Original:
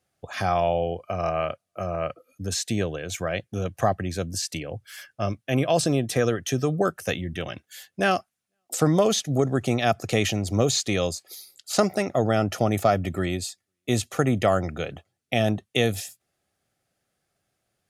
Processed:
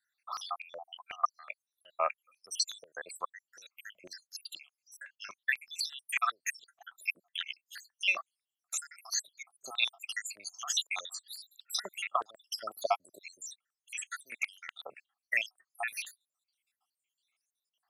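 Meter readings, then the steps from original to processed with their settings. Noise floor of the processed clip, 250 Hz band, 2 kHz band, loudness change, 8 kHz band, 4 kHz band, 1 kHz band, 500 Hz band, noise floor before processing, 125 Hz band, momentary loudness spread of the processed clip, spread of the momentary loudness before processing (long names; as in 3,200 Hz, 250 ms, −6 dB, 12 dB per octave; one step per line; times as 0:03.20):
below −85 dBFS, below −35 dB, −3.5 dB, −10.5 dB, −7.0 dB, −5.0 dB, −9.5 dB, −20.5 dB, −81 dBFS, below −40 dB, 18 LU, 12 LU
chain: time-frequency cells dropped at random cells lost 80%
high-pass on a step sequencer 8.1 Hz 950–4,500 Hz
level −1.5 dB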